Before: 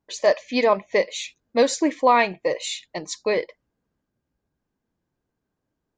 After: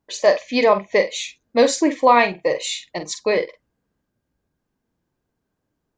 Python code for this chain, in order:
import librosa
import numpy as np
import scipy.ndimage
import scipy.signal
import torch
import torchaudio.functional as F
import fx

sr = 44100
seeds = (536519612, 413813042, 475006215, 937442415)

y = fx.doubler(x, sr, ms=46.0, db=-10.0)
y = F.gain(torch.from_numpy(y), 3.0).numpy()